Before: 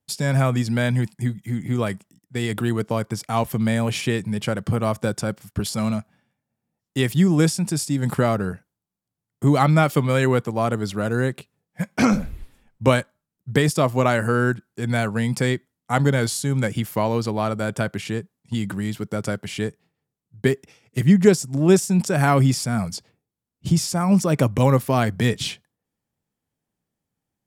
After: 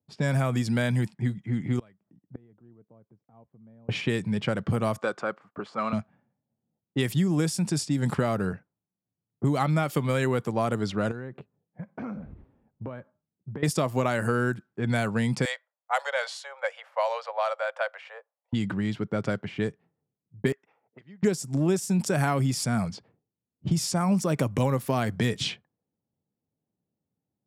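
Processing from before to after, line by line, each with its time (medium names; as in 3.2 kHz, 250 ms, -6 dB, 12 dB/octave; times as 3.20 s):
1.79–3.89 s: inverted gate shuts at -24 dBFS, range -30 dB
4.98–5.93 s: cabinet simulation 400–8900 Hz, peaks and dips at 1.2 kHz +9 dB, 3.4 kHz -3 dB, 5.5 kHz -4 dB
11.11–13.63 s: compression 8:1, threshold -31 dBFS
15.45–18.53 s: steep high-pass 510 Hz 96 dB/octave
20.52–21.23 s: auto-wah 700–4300 Hz, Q 2.2, up, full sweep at -19 dBFS
whole clip: high-pass 87 Hz; level-controlled noise filter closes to 660 Hz, open at -17.5 dBFS; compression 5:1, threshold -20 dBFS; trim -1 dB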